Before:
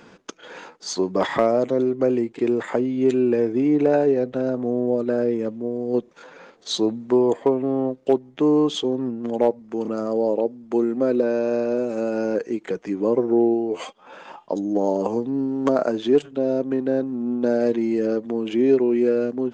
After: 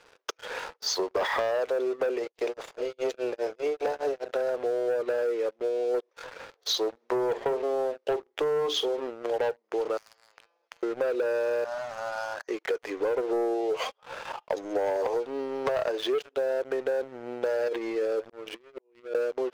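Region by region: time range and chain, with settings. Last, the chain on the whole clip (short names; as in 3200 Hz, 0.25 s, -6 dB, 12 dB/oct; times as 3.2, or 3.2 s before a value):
2.18–4.31 spectral limiter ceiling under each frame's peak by 19 dB + tremolo 4.9 Hz, depth 95% + bell 1900 Hz -13.5 dB 2.3 oct
6.9–9.08 notches 60/120/180/240/300/360/420 Hz + doubler 45 ms -14 dB
9.97–10.83 compressor 12:1, threshold -22 dBFS + resonator 170 Hz, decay 0.43 s, mix 80% + spectral compressor 10:1
11.64–12.48 steep high-pass 570 Hz 96 dB/oct + fixed phaser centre 1100 Hz, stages 4
17.68–19.15 negative-ratio compressor -24 dBFS, ratio -0.5 + auto swell 0.69 s + air absorption 82 m
whole clip: elliptic band-pass 450–5800 Hz, stop band 40 dB; sample leveller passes 3; compressor, threshold -19 dBFS; gain -6 dB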